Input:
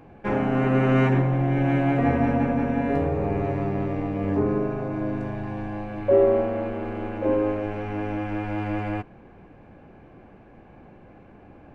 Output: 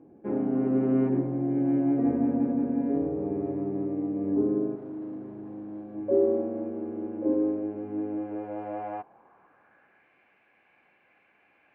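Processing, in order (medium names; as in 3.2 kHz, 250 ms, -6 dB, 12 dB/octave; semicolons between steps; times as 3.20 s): 4.75–5.95 s: overload inside the chain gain 33 dB; band-pass sweep 310 Hz -> 2.3 kHz, 7.99–10.16 s; trim +1 dB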